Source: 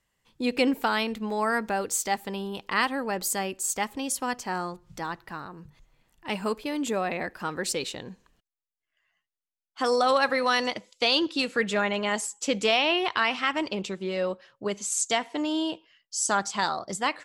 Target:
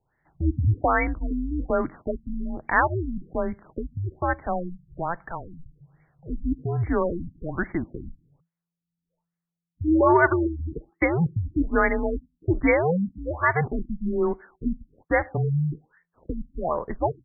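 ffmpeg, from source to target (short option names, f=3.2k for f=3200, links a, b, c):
-af "highshelf=f=2.3k:g=7,adynamicsmooth=sensitivity=1:basefreq=6k,afreqshift=-170,afftfilt=real='re*lt(b*sr/1024,270*pow(2300/270,0.5+0.5*sin(2*PI*1.2*pts/sr)))':imag='im*lt(b*sr/1024,270*pow(2300/270,0.5+0.5*sin(2*PI*1.2*pts/sr)))':win_size=1024:overlap=0.75,volume=4.5dB"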